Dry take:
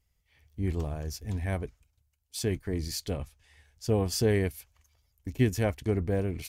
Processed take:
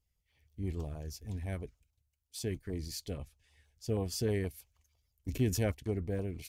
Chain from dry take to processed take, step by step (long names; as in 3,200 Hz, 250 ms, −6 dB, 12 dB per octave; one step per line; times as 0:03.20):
auto-filter notch saw down 6.3 Hz 630–2,200 Hz
0:05.28–0:05.72: envelope flattener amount 50%
level −6.5 dB